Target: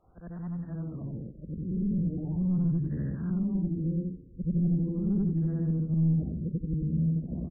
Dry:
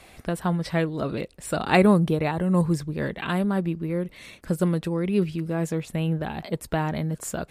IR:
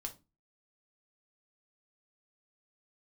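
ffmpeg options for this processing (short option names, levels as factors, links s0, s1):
-filter_complex "[0:a]afftfilt=real='re':imag='-im':win_size=8192:overlap=0.75,acrossover=split=350[s0][s1];[s1]acompressor=threshold=0.00891:ratio=2[s2];[s0][s2]amix=inputs=2:normalize=0,aresample=8000,asoftclip=type=tanh:threshold=0.0376,aresample=44100,asubboost=boost=12:cutoff=230,asplit=2[s3][s4];[s4]asplit=2[s5][s6];[s5]adelay=117,afreqshift=89,volume=0.0668[s7];[s6]adelay=234,afreqshift=178,volume=0.0248[s8];[s7][s8]amix=inputs=2:normalize=0[s9];[s3][s9]amix=inputs=2:normalize=0,afftfilt=real='re*lt(b*sr/1024,530*pow(2000/530,0.5+0.5*sin(2*PI*0.4*pts/sr)))':imag='im*lt(b*sr/1024,530*pow(2000/530,0.5+0.5*sin(2*PI*0.4*pts/sr)))':win_size=1024:overlap=0.75,volume=0.355"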